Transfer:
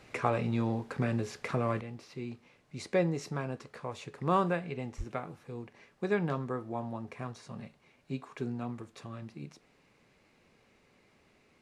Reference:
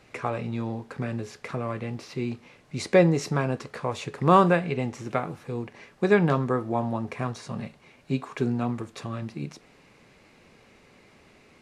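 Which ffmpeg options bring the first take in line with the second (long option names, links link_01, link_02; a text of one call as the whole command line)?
ffmpeg -i in.wav -filter_complex "[0:a]asplit=3[link_01][link_02][link_03];[link_01]afade=type=out:start_time=4.97:duration=0.02[link_04];[link_02]highpass=frequency=140:width=0.5412,highpass=frequency=140:width=1.3066,afade=type=in:start_time=4.97:duration=0.02,afade=type=out:start_time=5.09:duration=0.02[link_05];[link_03]afade=type=in:start_time=5.09:duration=0.02[link_06];[link_04][link_05][link_06]amix=inputs=3:normalize=0,asetnsamples=nb_out_samples=441:pad=0,asendcmd='1.81 volume volume 10dB',volume=0dB" out.wav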